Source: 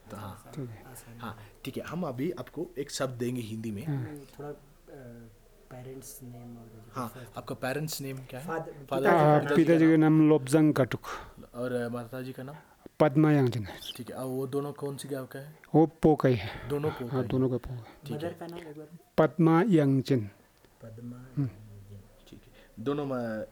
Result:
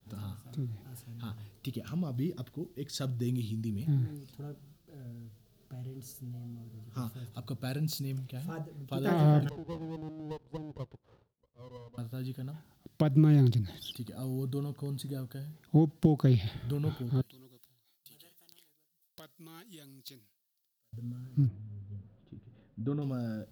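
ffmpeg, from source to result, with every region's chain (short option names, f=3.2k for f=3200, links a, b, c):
-filter_complex "[0:a]asettb=1/sr,asplit=3[a][b][c];[a]atrim=end=9.494[d];[b]atrim=start=9.49:end=11.98,asetpts=PTS-STARTPTS,afade=t=in:d=0.004:c=qsin,afade=t=out:st=2.486:d=0.004:c=qsin,bandpass=f=500:t=q:w=4.7,aeval=exprs='max(val(0),0)':c=same[e];[c]atrim=start=11.976[f];[d][e]acrossfade=d=0.004:c1=hsin:c2=qsin[g];[g][f]acrossfade=d=0.004:c1=qsin:c2=hsin,asettb=1/sr,asplit=3[h][i][j];[h]atrim=end=17.214[k];[i]atrim=start=17.21:end=20.93,asetpts=PTS-STARTPTS,afade=t=in:d=0.004:c=qsin,afade=t=out:st=3.716:d=0.004:c=qsin,aderivative,aeval=exprs='(mod(31.6*val(0)+1,2)-1)/31.6':c=same[l];[j]atrim=start=20.926[m];[k][l]acrossfade=d=0.004:c1=hsin:c2=qsin[n];[n][m]acrossfade=d=0.004:c1=qsin:c2=hsin,asettb=1/sr,asplit=3[o][p][q];[o]atrim=end=21.474[r];[p]atrim=start=21.47:end=23.02,asetpts=PTS-STARTPTS,afade=t=in:d=0.004:c=qsin,afade=t=out:st=1.546:d=0.004:c=qsin,lowpass=2.1k,aemphasis=mode=reproduction:type=75fm[s];[q]atrim=start=23.016[t];[r][s]acrossfade=d=0.004:c1=hsin:c2=qsin[u];[u][t]acrossfade=d=0.004:c1=qsin:c2=hsin,highpass=61,agate=range=-33dB:threshold=-57dB:ratio=3:detection=peak,equalizer=f=125:t=o:w=1:g=6,equalizer=f=500:t=o:w=1:g=-10,equalizer=f=1k:t=o:w=1:g=-9,equalizer=f=2k:t=o:w=1:g=-11,equalizer=f=4k:t=o:w=1:g=4,equalizer=f=8k:t=o:w=1:g=-7"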